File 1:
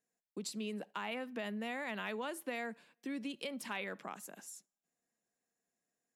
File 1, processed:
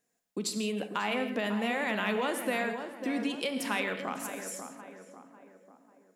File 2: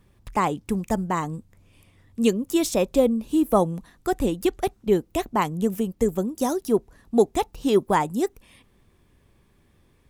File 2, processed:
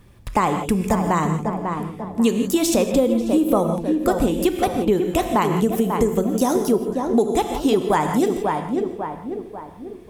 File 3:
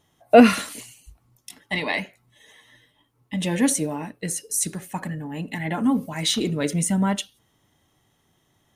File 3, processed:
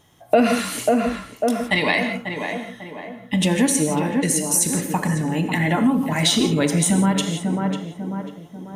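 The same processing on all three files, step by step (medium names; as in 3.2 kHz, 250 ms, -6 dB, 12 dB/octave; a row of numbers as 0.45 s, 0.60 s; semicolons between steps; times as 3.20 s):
tape echo 544 ms, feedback 53%, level -7.5 dB, low-pass 1.4 kHz; gated-style reverb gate 190 ms flat, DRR 7.5 dB; compression 4:1, threshold -24 dBFS; trim +8.5 dB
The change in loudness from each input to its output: +9.5 LU, +3.5 LU, +2.0 LU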